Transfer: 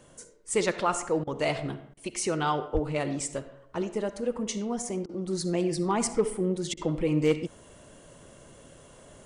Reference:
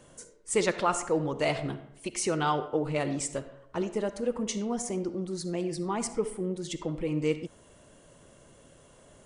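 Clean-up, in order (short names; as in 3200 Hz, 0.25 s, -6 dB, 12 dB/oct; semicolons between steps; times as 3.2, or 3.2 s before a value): clip repair -15 dBFS; 2.73–2.85 HPF 140 Hz 24 dB/oct; interpolate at 1.24/1.94/5.06/6.74, 30 ms; 5.27 gain correction -4.5 dB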